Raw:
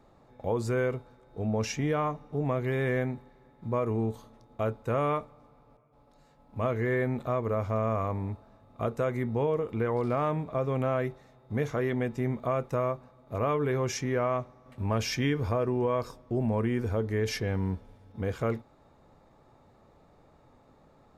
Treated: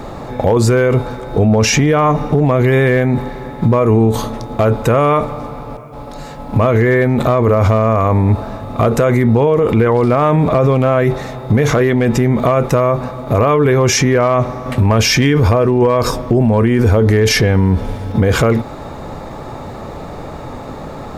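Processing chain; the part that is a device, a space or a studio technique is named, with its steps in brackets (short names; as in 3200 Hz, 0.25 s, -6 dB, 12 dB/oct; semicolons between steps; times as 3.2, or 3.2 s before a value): loud club master (compressor 3:1, threshold -31 dBFS, peak gain reduction 6.5 dB; hard clip -25.5 dBFS, distortion -30 dB; maximiser +35.5 dB); gain -4 dB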